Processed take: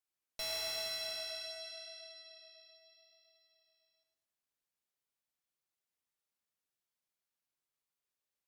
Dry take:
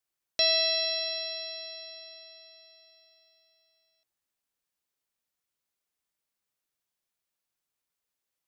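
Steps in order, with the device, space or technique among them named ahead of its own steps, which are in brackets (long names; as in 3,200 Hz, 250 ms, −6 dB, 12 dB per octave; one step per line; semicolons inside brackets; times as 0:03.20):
rockabilly slapback (tube saturation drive 33 dB, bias 0.5; tape delay 107 ms, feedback 34%, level −5 dB, low-pass 4,800 Hz)
level −4.5 dB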